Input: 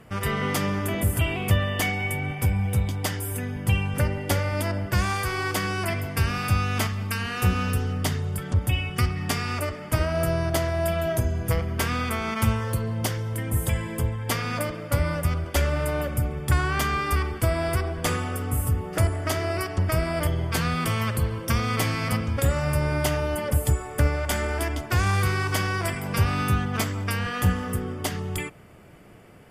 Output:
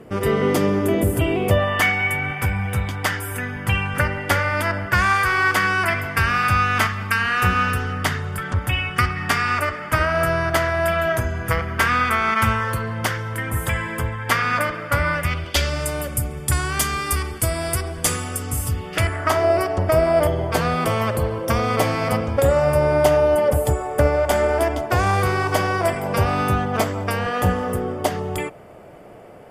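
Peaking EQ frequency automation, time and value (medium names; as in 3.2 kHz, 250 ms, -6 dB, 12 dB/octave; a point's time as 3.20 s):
peaking EQ +13.5 dB 1.7 oct
1.41 s 380 Hz
1.83 s 1.5 kHz
15.08 s 1.5 kHz
16.01 s 9.3 kHz
18.27 s 9.3 kHz
18.97 s 2.9 kHz
19.48 s 620 Hz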